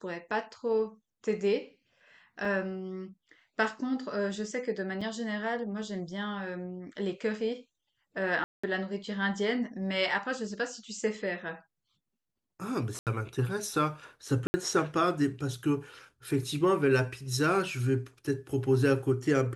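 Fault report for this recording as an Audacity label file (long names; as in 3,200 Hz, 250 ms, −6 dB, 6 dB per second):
2.450000	2.450000	drop-out 3.9 ms
5.010000	5.020000	drop-out 5.1 ms
8.440000	8.630000	drop-out 195 ms
12.990000	13.070000	drop-out 78 ms
14.470000	14.540000	drop-out 70 ms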